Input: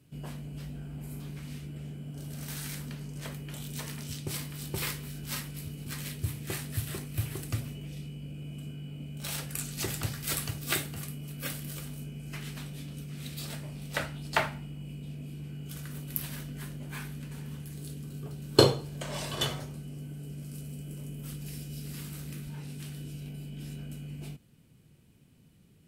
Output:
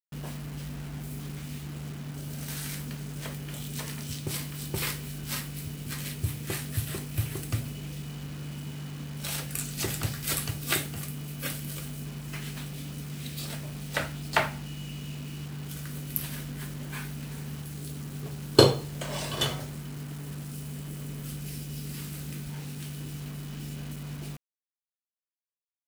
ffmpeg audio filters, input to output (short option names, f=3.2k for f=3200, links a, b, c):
-filter_complex "[0:a]asettb=1/sr,asplit=3[a][b][c];[a]atrim=end=14.664[d];[b]atrim=start=14.66:end=15.46,asetpts=PTS-STARTPTS,afade=t=in:d=0.004:c=qsin,afade=t=out:st=0.796:d=0.004:c=qsin,equalizer=f=2.8k:t=o:w=0.24:g=12[e];[c]atrim=start=15.456[f];[d][e]acrossfade=d=0.004:c1=hsin:c2=qsin[g];[g][f]acrossfade=d=0.004:c1=qsin:c2=hsin,acrusher=bits=7:mix=0:aa=0.000001,volume=2.5dB"